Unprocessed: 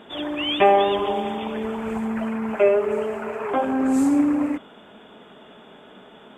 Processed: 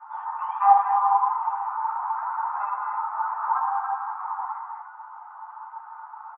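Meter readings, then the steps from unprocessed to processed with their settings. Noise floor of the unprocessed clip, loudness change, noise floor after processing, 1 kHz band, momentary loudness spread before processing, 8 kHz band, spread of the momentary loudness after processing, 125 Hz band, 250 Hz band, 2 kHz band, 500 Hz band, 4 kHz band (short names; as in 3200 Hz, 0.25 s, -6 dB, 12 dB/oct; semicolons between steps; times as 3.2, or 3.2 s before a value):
-48 dBFS, -3.0 dB, -44 dBFS, +4.5 dB, 11 LU, under -35 dB, 22 LU, under -40 dB, under -40 dB, -8.0 dB, under -30 dB, under -35 dB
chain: elliptic low-pass 1200 Hz, stop band 80 dB; on a send: loudspeakers at several distances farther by 70 m -5 dB, 97 m -9 dB; on the sum: FDN reverb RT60 0.33 s, low-frequency decay 0.7×, high-frequency decay 0.95×, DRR -6 dB; in parallel at +1.5 dB: compressor, threshold -24 dBFS, peak gain reduction 18 dB; on the sum: steep high-pass 810 Hz 96 dB/oct; ensemble effect; gain +1.5 dB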